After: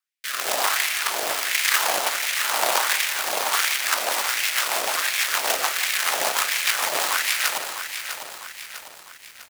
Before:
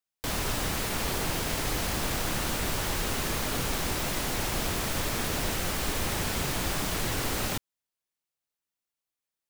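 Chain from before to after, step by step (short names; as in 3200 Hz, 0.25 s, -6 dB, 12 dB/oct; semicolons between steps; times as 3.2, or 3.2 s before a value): frequency shift -15 Hz; in parallel at +1 dB: bit-crush 4-bit; on the sum: LFO high-pass sine 1.4 Hz 650–2200 Hz; rotary speaker horn 1 Hz, later 6.7 Hz, at 3.38; feedback echo 0.172 s, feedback 33%, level -14 dB; lo-fi delay 0.651 s, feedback 55%, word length 8-bit, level -8.5 dB; gain +5 dB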